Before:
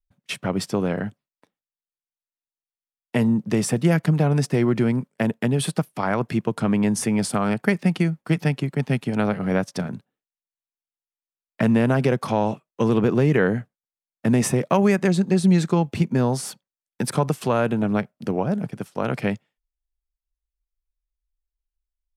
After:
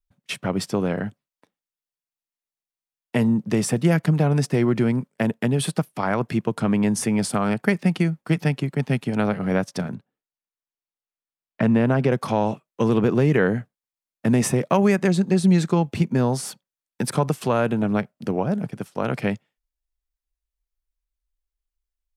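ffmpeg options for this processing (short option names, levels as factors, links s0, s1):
-filter_complex "[0:a]asettb=1/sr,asplit=3[s0][s1][s2];[s0]atrim=end=9.944[s3];[s1]atrim=start=9.94:end=12.12,asetpts=PTS-STARTPTS,afade=t=in:d=0.004:c=qsin,afade=t=out:st=2.176:d=0.004:c=qsin,lowpass=f=2800:p=1[s4];[s2]atrim=start=12.116[s5];[s3][s4]acrossfade=d=0.004:c1=hsin:c2=qsin[s6];[s6][s5]acrossfade=d=0.004:c1=qsin:c2=hsin"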